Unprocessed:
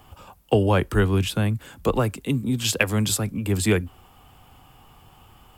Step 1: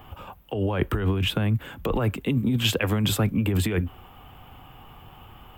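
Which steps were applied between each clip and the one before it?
flat-topped bell 7,000 Hz −12.5 dB
compressor whose output falls as the input rises −24 dBFS, ratio −1
level +1.5 dB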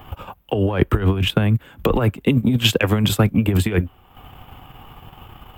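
transient designer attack +5 dB, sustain −10 dB
level +5 dB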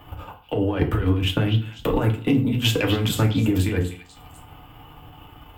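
tube saturation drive 6 dB, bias 0.3
echo through a band-pass that steps 248 ms, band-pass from 3,300 Hz, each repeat 0.7 octaves, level −7 dB
feedback delay network reverb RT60 0.44 s, low-frequency decay 1.1×, high-frequency decay 0.7×, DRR 1 dB
level −5 dB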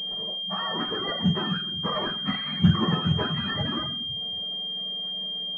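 frequency axis turned over on the octave scale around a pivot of 740 Hz
high-frequency loss of the air 130 metres
switching amplifier with a slow clock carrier 3,200 Hz

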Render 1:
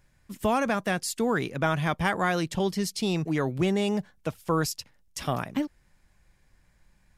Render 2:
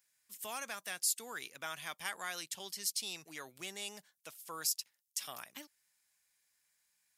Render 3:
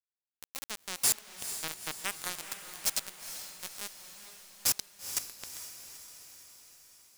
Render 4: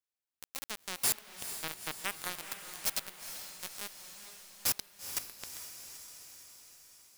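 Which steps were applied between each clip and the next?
first difference
bit reduction 5 bits; feedback delay with all-pass diffusion 452 ms, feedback 59%, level −9.5 dB; level +5 dB
dynamic equaliser 7,000 Hz, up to −6 dB, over −46 dBFS, Q 1

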